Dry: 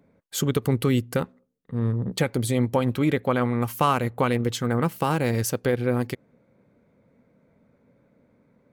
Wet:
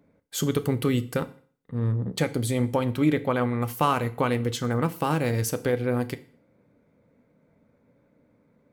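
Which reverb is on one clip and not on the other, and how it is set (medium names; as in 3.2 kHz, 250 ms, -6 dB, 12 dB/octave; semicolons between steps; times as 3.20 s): FDN reverb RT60 0.46 s, low-frequency decay 1×, high-frequency decay 1×, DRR 10.5 dB; trim -2 dB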